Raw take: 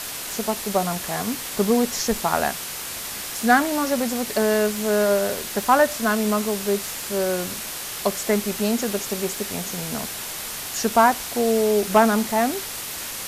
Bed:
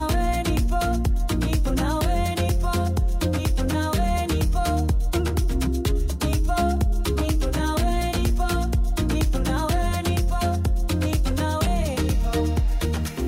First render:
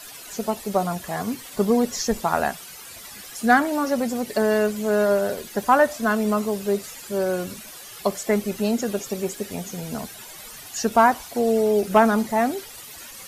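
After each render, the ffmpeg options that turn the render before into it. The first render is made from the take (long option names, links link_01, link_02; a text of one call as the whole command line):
ffmpeg -i in.wav -af "afftdn=noise_reduction=13:noise_floor=-32" out.wav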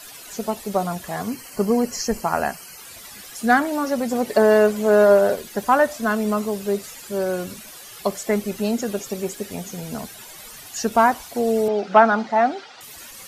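ffmpeg -i in.wav -filter_complex "[0:a]asettb=1/sr,asplit=3[link_01][link_02][link_03];[link_01]atrim=end=1.284[link_04];[link_02]atrim=start=1.28:end=2.78,asetpts=PTS-STARTPTS,afade=type=in:duration=0.004:curve=qsin,afade=type=out:start_time=1.496:duration=0.004:curve=qsin,asuperstop=centerf=3600:order=12:qfactor=4.5[link_05];[link_03]atrim=start=2.776[link_06];[link_04][link_05]acrossfade=duration=0.004:curve1=hsin:curve2=qsin[link_07];[link_07][link_06]acrossfade=duration=0.004:curve1=qsin:curve2=hsin,asettb=1/sr,asplit=3[link_08][link_09][link_10];[link_08]atrim=end=4.114[link_11];[link_09]atrim=start=4.11:end=5.36,asetpts=PTS-STARTPTS,afade=type=in:duration=0.004:curve=qsin,afade=type=out:start_time=1.246:duration=0.004:curve=qsin,equalizer=frequency=710:width=0.47:gain=7[link_12];[link_10]atrim=start=5.356[link_13];[link_11][link_12]acrossfade=duration=0.004:curve1=hsin:curve2=qsin[link_14];[link_14][link_13]acrossfade=duration=0.004:curve1=qsin:curve2=hsin,asettb=1/sr,asplit=3[link_15][link_16][link_17];[link_15]atrim=end=11.684[link_18];[link_16]atrim=start=11.68:end=12.81,asetpts=PTS-STARTPTS,afade=type=in:duration=0.004:curve=qsin,afade=type=out:start_time=1.126:duration=0.004:curve=qsin,highpass=230,equalizer=frequency=390:width_type=q:width=4:gain=-4,equalizer=frequency=770:width_type=q:width=4:gain=8,equalizer=frequency=1400:width_type=q:width=4:gain=7,lowpass=frequency=5100:width=0.5412,lowpass=frequency=5100:width=1.3066[link_19];[link_17]atrim=start=12.806[link_20];[link_18][link_19]acrossfade=duration=0.004:curve1=hsin:curve2=qsin[link_21];[link_21][link_20]acrossfade=duration=0.004:curve1=qsin:curve2=hsin" out.wav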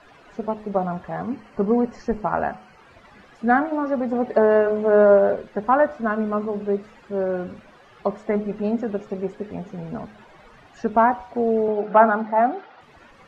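ffmpeg -i in.wav -af "lowpass=1500,bandreject=frequency=106.4:width_type=h:width=4,bandreject=frequency=212.8:width_type=h:width=4,bandreject=frequency=319.2:width_type=h:width=4,bandreject=frequency=425.6:width_type=h:width=4,bandreject=frequency=532:width_type=h:width=4,bandreject=frequency=638.4:width_type=h:width=4,bandreject=frequency=744.8:width_type=h:width=4,bandreject=frequency=851.2:width_type=h:width=4,bandreject=frequency=957.6:width_type=h:width=4,bandreject=frequency=1064:width_type=h:width=4,bandreject=frequency=1170.4:width_type=h:width=4,bandreject=frequency=1276.8:width_type=h:width=4,bandreject=frequency=1383.2:width_type=h:width=4,bandreject=frequency=1489.6:width_type=h:width=4" out.wav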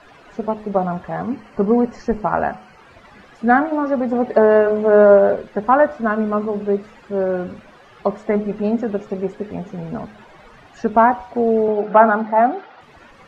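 ffmpeg -i in.wav -af "volume=4dB,alimiter=limit=-1dB:level=0:latency=1" out.wav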